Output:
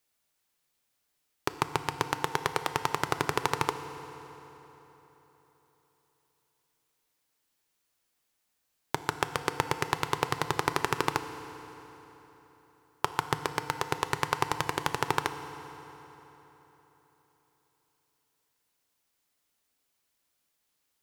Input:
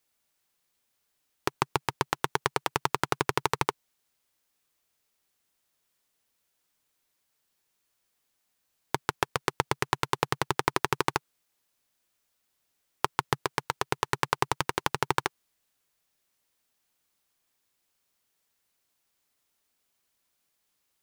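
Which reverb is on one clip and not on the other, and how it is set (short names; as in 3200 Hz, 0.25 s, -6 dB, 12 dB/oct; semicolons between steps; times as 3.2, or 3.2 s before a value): FDN reverb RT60 3.9 s, high-frequency decay 0.75×, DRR 9 dB; gain -1.5 dB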